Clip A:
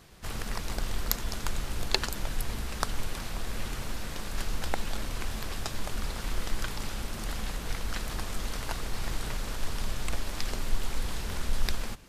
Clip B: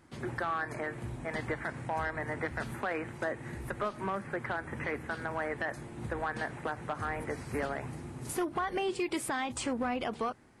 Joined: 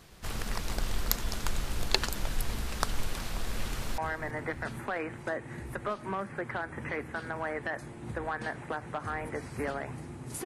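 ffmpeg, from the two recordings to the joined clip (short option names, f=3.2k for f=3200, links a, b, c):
-filter_complex "[0:a]apad=whole_dur=10.45,atrim=end=10.45,atrim=end=3.982[a];[1:a]atrim=start=1.928:end=8.4[b];[a][b]acrossfade=d=0.004:c1=hsin:c2=hsin,asplit=2[c][d];[d]afade=t=in:st=3.7:d=0.01,afade=t=out:st=3.98:d=0.01,aecho=0:1:330|660|990|1320:0.16788|0.0755462|0.0339958|0.0152981[e];[c][e]amix=inputs=2:normalize=0"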